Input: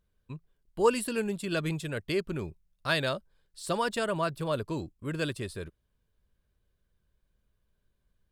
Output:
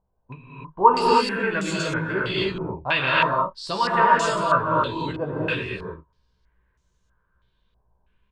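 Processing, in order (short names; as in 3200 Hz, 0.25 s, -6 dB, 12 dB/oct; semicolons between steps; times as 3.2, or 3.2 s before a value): bell 980 Hz +9.5 dB 0.29 oct; on a send: early reflections 16 ms -4.5 dB, 42 ms -15 dB; on the sum: non-linear reverb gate 0.33 s rising, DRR -4.5 dB; stepped low-pass 3.1 Hz 770–6600 Hz; gain -1 dB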